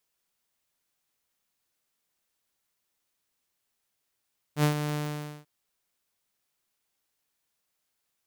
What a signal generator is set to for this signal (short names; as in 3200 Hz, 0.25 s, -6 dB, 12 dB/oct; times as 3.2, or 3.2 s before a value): ADSR saw 149 Hz, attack 75 ms, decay 0.1 s, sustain -9 dB, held 0.38 s, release 0.512 s -16.5 dBFS